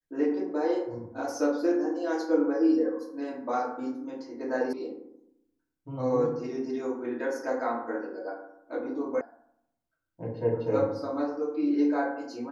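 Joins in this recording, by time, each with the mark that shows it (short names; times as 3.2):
4.73 sound cut off
9.21 sound cut off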